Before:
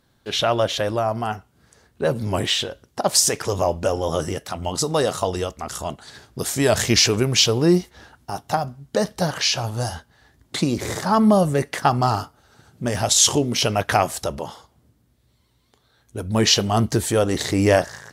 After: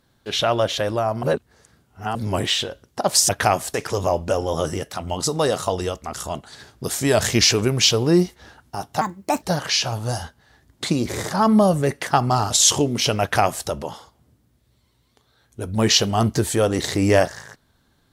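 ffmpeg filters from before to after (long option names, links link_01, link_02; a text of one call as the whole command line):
ffmpeg -i in.wav -filter_complex "[0:a]asplit=8[link_01][link_02][link_03][link_04][link_05][link_06][link_07][link_08];[link_01]atrim=end=1.232[link_09];[link_02]atrim=start=1.228:end=2.152,asetpts=PTS-STARTPTS,areverse[link_10];[link_03]atrim=start=2.148:end=3.292[link_11];[link_04]atrim=start=13.778:end=14.232[link_12];[link_05]atrim=start=3.288:end=8.564[link_13];[link_06]atrim=start=8.56:end=9.14,asetpts=PTS-STARTPTS,asetrate=61740,aresample=44100[link_14];[link_07]atrim=start=9.136:end=12.222[link_15];[link_08]atrim=start=13.068[link_16];[link_09][link_10]acrossfade=duration=0.004:curve1=hsin:curve2=hsin[link_17];[link_17][link_11]acrossfade=duration=0.004:curve1=hsin:curve2=hsin[link_18];[link_18][link_12]acrossfade=duration=0.004:curve1=hsin:curve2=hsin[link_19];[link_19][link_13]acrossfade=duration=0.004:curve1=hsin:curve2=hsin[link_20];[link_20][link_14]acrossfade=duration=0.004:curve1=hsin:curve2=hsin[link_21];[link_21][link_15]acrossfade=duration=0.004:curve1=hsin:curve2=hsin[link_22];[link_22][link_16]acrossfade=duration=0.004:curve1=hsin:curve2=hsin" out.wav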